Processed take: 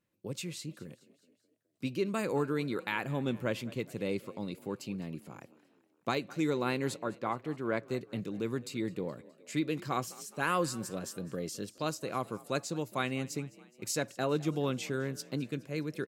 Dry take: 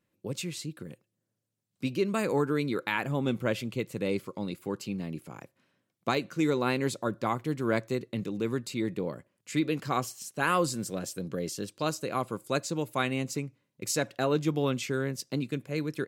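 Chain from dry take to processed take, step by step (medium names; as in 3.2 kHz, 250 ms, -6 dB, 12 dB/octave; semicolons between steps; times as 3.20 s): 6.96–7.91 s: tone controls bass -5 dB, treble -11 dB; on a send: frequency-shifting echo 209 ms, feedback 57%, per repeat +36 Hz, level -21 dB; on the sum: trim -4 dB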